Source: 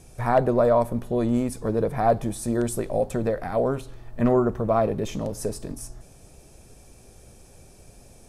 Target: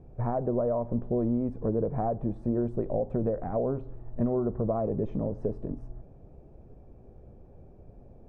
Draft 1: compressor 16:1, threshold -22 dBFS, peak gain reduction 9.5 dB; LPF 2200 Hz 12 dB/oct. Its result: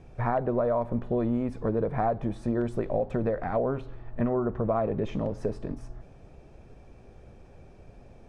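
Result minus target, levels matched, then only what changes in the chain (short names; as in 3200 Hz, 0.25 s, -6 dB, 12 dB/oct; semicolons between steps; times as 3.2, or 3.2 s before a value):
2000 Hz band +13.5 dB
change: LPF 670 Hz 12 dB/oct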